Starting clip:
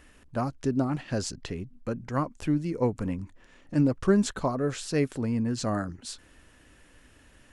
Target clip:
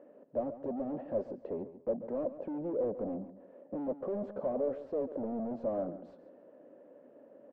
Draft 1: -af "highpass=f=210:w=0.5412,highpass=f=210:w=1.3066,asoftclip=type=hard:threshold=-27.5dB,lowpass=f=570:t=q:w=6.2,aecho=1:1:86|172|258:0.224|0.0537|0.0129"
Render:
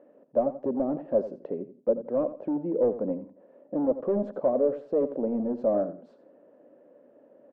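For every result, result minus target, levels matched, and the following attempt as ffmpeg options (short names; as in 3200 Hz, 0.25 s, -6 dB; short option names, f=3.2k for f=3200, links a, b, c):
echo 53 ms early; hard clip: distortion -5 dB
-af "highpass=f=210:w=0.5412,highpass=f=210:w=1.3066,asoftclip=type=hard:threshold=-27.5dB,lowpass=f=570:t=q:w=6.2,aecho=1:1:139|278|417:0.224|0.0537|0.0129"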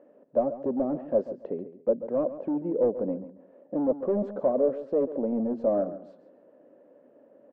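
hard clip: distortion -5 dB
-af "highpass=f=210:w=0.5412,highpass=f=210:w=1.3066,asoftclip=type=hard:threshold=-38.5dB,lowpass=f=570:t=q:w=6.2,aecho=1:1:139|278|417:0.224|0.0537|0.0129"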